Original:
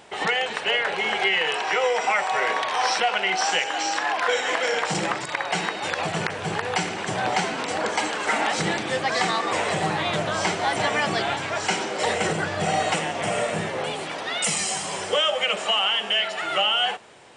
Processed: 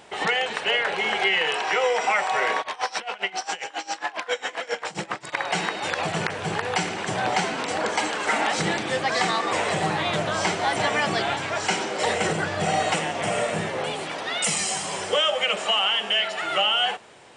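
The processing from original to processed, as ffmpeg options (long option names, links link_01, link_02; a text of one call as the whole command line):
ffmpeg -i in.wav -filter_complex "[0:a]asplit=3[link_01][link_02][link_03];[link_01]afade=type=out:start_time=2.61:duration=0.02[link_04];[link_02]aeval=exprs='val(0)*pow(10,-23*(0.5-0.5*cos(2*PI*7.4*n/s))/20)':channel_layout=same,afade=type=in:start_time=2.61:duration=0.02,afade=type=out:start_time=5.32:duration=0.02[link_05];[link_03]afade=type=in:start_time=5.32:duration=0.02[link_06];[link_04][link_05][link_06]amix=inputs=3:normalize=0" out.wav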